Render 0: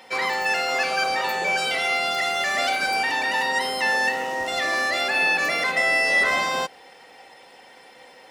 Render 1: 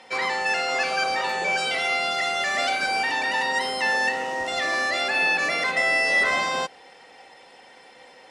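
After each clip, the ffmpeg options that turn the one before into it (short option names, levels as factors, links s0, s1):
-af "lowpass=f=9900:w=0.5412,lowpass=f=9900:w=1.3066,volume=0.891"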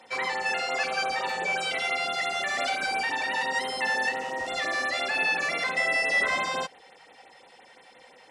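-af "afftfilt=real='re*(1-between(b*sr/1024,260*pow(6400/260,0.5+0.5*sin(2*PI*5.8*pts/sr))/1.41,260*pow(6400/260,0.5+0.5*sin(2*PI*5.8*pts/sr))*1.41))':imag='im*(1-between(b*sr/1024,260*pow(6400/260,0.5+0.5*sin(2*PI*5.8*pts/sr))/1.41,260*pow(6400/260,0.5+0.5*sin(2*PI*5.8*pts/sr))*1.41))':win_size=1024:overlap=0.75,volume=0.708"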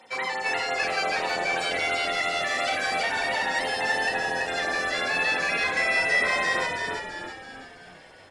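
-filter_complex "[0:a]asplit=7[s0][s1][s2][s3][s4][s5][s6];[s1]adelay=331,afreqshift=-85,volume=0.668[s7];[s2]adelay=662,afreqshift=-170,volume=0.327[s8];[s3]adelay=993,afreqshift=-255,volume=0.16[s9];[s4]adelay=1324,afreqshift=-340,volume=0.0785[s10];[s5]adelay=1655,afreqshift=-425,volume=0.0385[s11];[s6]adelay=1986,afreqshift=-510,volume=0.0188[s12];[s0][s7][s8][s9][s10][s11][s12]amix=inputs=7:normalize=0"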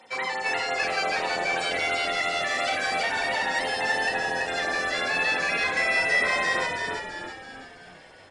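-af "aresample=22050,aresample=44100"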